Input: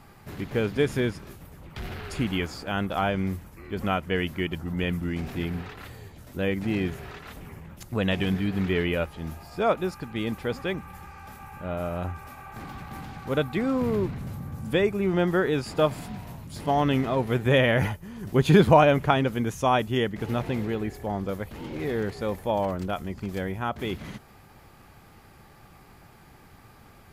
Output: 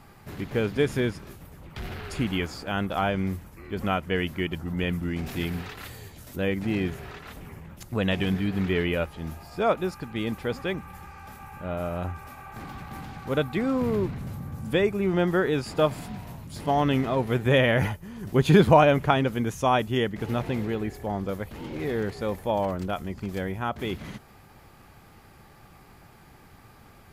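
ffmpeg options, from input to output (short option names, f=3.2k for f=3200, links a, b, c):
-filter_complex "[0:a]asettb=1/sr,asplit=3[a][b][c];[a]atrim=end=5.264[d];[b]atrim=start=5.26:end=6.36,asetpts=PTS-STARTPTS,afade=t=in:d=0.004:c=qsin,afade=t=out:st=1.096:d=0.004:c=qsin,highshelf=f=2.9k:g=8.5[e];[c]atrim=start=6.356[f];[d][e]acrossfade=d=0.004:c1=hsin:c2=qsin[g];[g][f]acrossfade=d=0.004:c1=qsin:c2=hsin"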